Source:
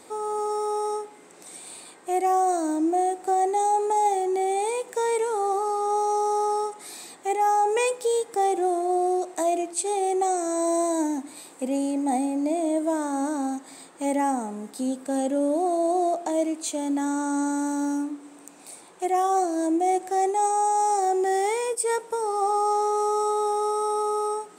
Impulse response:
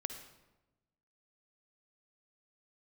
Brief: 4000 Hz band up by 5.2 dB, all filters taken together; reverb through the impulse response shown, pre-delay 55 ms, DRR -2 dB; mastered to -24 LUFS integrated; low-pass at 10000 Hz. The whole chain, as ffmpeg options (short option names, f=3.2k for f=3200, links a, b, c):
-filter_complex "[0:a]lowpass=10k,equalizer=f=4k:t=o:g=6.5,asplit=2[a][b];[1:a]atrim=start_sample=2205,adelay=55[c];[b][c]afir=irnorm=-1:irlink=0,volume=2.5dB[d];[a][d]amix=inputs=2:normalize=0,volume=-3.5dB"